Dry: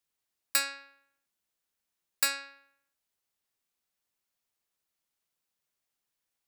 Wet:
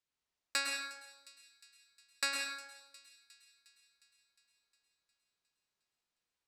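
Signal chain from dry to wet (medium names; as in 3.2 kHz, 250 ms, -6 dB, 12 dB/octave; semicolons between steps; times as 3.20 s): low-pass 6.6 kHz 12 dB/octave; feedback echo behind a high-pass 358 ms, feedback 63%, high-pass 3 kHz, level -17 dB; plate-style reverb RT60 0.93 s, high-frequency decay 0.6×, pre-delay 95 ms, DRR 0.5 dB; trim -4 dB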